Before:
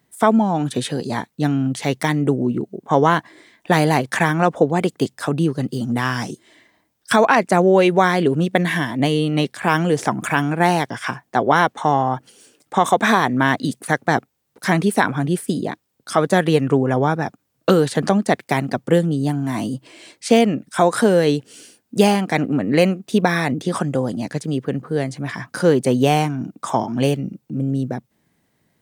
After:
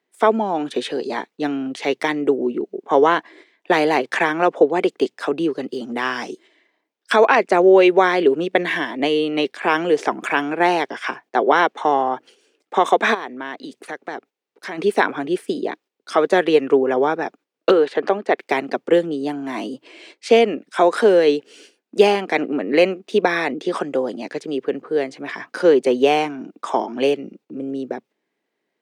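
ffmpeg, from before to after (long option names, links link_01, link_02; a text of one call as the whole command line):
ffmpeg -i in.wav -filter_complex "[0:a]asplit=3[link_01][link_02][link_03];[link_01]afade=type=out:start_time=13.13:duration=0.02[link_04];[link_02]acompressor=threshold=-33dB:ratio=2:attack=3.2:release=140:knee=1:detection=peak,afade=type=in:start_time=13.13:duration=0.02,afade=type=out:start_time=14.77:duration=0.02[link_05];[link_03]afade=type=in:start_time=14.77:duration=0.02[link_06];[link_04][link_05][link_06]amix=inputs=3:normalize=0,asettb=1/sr,asplit=3[link_07][link_08][link_09];[link_07]atrim=end=17.714[link_10];[link_08]atrim=start=17.71:end=18.38,asetpts=PTS-STARTPTS,afade=type=in:duration=0.004:curve=qsin,afade=type=out:start_time=0.666:duration=0.004:curve=qsin,bass=frequency=250:gain=-9,treble=frequency=4000:gain=-12[link_11];[link_09]atrim=start=18.376[link_12];[link_10][link_11]acrossfade=duration=0.004:curve1=hsin:curve2=qsin[link_13];[link_13][link_12]acrossfade=duration=0.004:curve1=qsin:curve2=hsin,equalizer=frequency=100:width_type=o:width=0.67:gain=-12,equalizer=frequency=400:width_type=o:width=0.67:gain=7,equalizer=frequency=2500:width_type=o:width=0.67:gain=4,agate=range=-8dB:threshold=-42dB:ratio=16:detection=peak,acrossover=split=250 5900:gain=0.0708 1 0.2[link_14][link_15][link_16];[link_14][link_15][link_16]amix=inputs=3:normalize=0,volume=-1dB" out.wav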